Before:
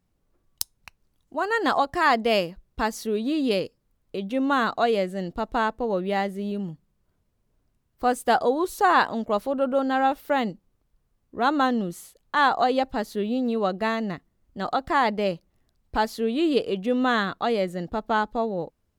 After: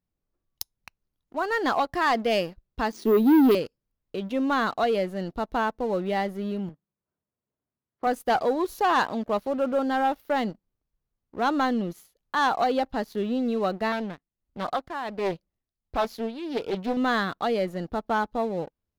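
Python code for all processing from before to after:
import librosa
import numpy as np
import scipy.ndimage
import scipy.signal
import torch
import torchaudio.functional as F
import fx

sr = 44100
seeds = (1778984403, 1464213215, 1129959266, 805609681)

y = fx.chain(x, sr, fx.highpass(hz=220.0, slope=24),
    fx.low_shelf_res(hz=480.0, db=9.5, q=3.0),
    fx.resample_bad(factor=3, down='filtered', up='hold'), at=(2.92, 3.55))
y = fx.chain(y, sr, fx.bandpass_edges(low_hz=100.0, high_hz=2000.0),
    fx.low_shelf(hz=170.0, db=-7.0), at=(6.69, 8.07))
y = fx.chain(y, sr, fx.tremolo(hz=1.4, depth=0.73),
    fx.doppler_dist(depth_ms=0.44), at=(13.92, 16.97))
y = fx.peak_eq(y, sr, hz=8200.0, db=-12.5, octaves=0.28)
y = fx.leveller(y, sr, passes=2)
y = F.gain(torch.from_numpy(y), -8.5).numpy()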